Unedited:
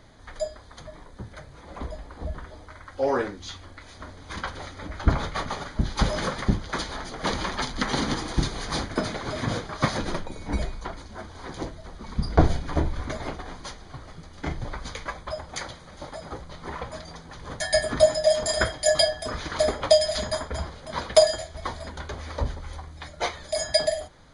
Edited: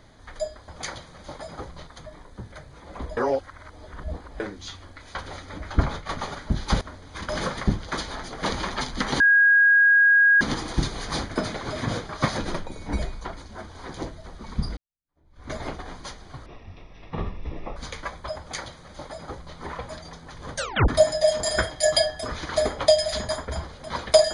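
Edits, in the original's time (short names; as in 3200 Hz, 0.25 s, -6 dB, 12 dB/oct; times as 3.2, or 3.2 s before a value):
1.98–3.21 reverse
3.96–4.44 move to 6.1
5–5.38 fade out equal-power, to -8.5 dB
8.01 add tone 1640 Hz -13 dBFS 1.21 s
12.37–13.12 fade in exponential
14.06–14.79 speed 56%
15.41–16.6 copy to 0.68
17.59 tape stop 0.32 s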